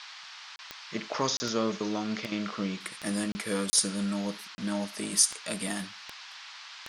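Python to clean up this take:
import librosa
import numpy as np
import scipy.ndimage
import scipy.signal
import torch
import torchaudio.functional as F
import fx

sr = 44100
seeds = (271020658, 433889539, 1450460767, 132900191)

y = fx.fix_declick_ar(x, sr, threshold=10.0)
y = fx.fix_interpolate(y, sr, at_s=(0.56, 1.37, 3.32, 3.7, 4.55), length_ms=30.0)
y = fx.noise_reduce(y, sr, print_start_s=0.05, print_end_s=0.55, reduce_db=30.0)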